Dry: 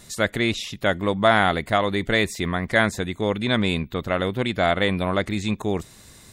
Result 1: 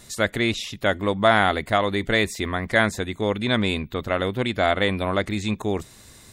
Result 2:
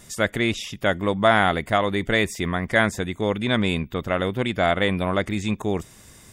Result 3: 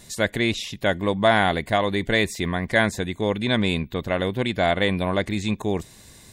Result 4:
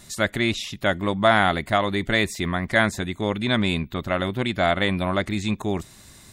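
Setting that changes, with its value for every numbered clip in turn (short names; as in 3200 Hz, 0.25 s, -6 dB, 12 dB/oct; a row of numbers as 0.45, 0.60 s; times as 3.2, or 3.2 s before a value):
notch, frequency: 170, 4100, 1300, 470 Hz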